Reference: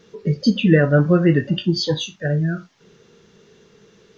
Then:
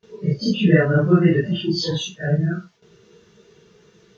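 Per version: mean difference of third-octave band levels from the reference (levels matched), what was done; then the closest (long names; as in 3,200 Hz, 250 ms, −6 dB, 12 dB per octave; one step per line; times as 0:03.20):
2.5 dB: random phases in long frames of 100 ms
noise gate with hold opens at −44 dBFS
notch comb filter 270 Hz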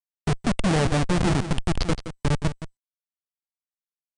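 12.5 dB: comparator with hysteresis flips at −15.5 dBFS
single-tap delay 171 ms −11.5 dB
MP2 192 kbit/s 32,000 Hz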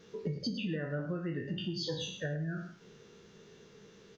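6.5 dB: peak hold with a decay on every bin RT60 0.40 s
downward compressor 8 to 1, threshold −27 dBFS, peak gain reduction 18.5 dB
on a send: single-tap delay 106 ms −11.5 dB
on the sum: level −6.5 dB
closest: first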